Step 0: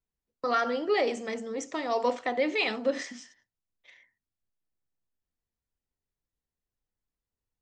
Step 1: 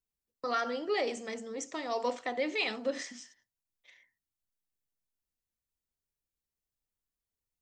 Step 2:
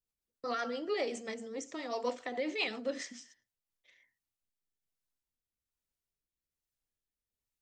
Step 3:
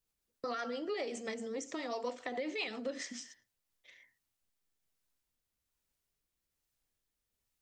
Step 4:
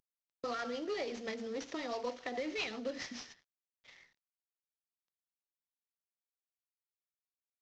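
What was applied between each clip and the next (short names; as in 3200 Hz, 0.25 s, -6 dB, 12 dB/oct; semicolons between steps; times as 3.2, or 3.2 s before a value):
high shelf 4900 Hz +8.5 dB; gain -5.5 dB
rotary speaker horn 7.5 Hz, later 1.2 Hz, at 3.1
compressor 3:1, threshold -44 dBFS, peak gain reduction 11.5 dB; gain +6 dB
CVSD 32 kbps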